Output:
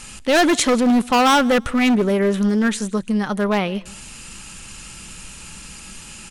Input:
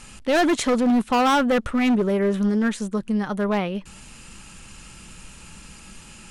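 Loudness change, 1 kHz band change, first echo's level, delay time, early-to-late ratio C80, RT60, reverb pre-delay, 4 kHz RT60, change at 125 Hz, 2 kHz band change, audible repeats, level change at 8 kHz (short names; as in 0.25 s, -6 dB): +3.5 dB, +4.0 dB, -24.0 dB, 0.158 s, none, none, none, none, +3.0 dB, +5.5 dB, 1, +8.5 dB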